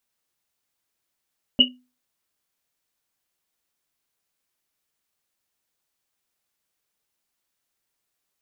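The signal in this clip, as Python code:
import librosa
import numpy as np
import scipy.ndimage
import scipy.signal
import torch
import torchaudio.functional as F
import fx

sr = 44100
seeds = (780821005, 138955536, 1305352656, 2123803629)

y = fx.risset_drum(sr, seeds[0], length_s=1.1, hz=250.0, decay_s=0.33, noise_hz=2900.0, noise_width_hz=140.0, noise_pct=65)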